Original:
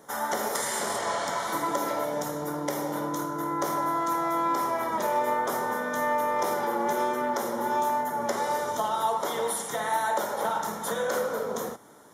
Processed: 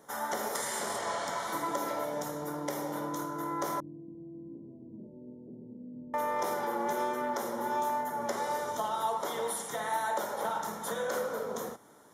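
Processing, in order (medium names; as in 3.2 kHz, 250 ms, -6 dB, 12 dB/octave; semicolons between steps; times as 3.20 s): 3.80–6.14 s: inverse Chebyshev low-pass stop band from 1.3 kHz, stop band 70 dB; trim -5 dB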